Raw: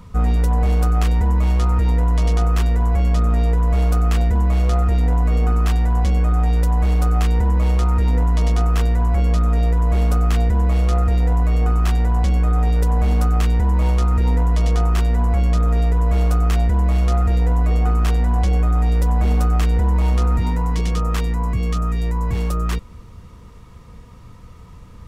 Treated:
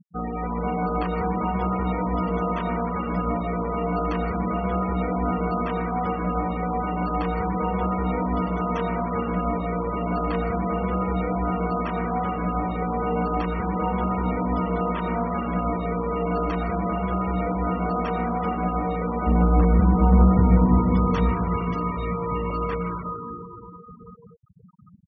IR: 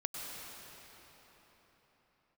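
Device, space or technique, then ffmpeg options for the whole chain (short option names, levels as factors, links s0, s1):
cave: -filter_complex "[0:a]asplit=3[s0][s1][s2];[s0]afade=t=out:st=19.26:d=0.02[s3];[s1]aemphasis=mode=reproduction:type=riaa,afade=t=in:st=19.26:d=0.02,afade=t=out:st=20.91:d=0.02[s4];[s2]afade=t=in:st=20.91:d=0.02[s5];[s3][s4][s5]amix=inputs=3:normalize=0,highpass=180,aecho=1:1:391:0.133[s6];[1:a]atrim=start_sample=2205[s7];[s6][s7]afir=irnorm=-1:irlink=0,highshelf=f=3900:g=-3,afftfilt=real='re*gte(hypot(re,im),0.0355)':imag='im*gte(hypot(re,im),0.0355)':win_size=1024:overlap=0.75"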